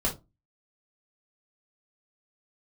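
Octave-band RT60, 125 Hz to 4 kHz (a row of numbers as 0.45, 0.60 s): 0.35, 0.35, 0.25, 0.20, 0.15, 0.15 s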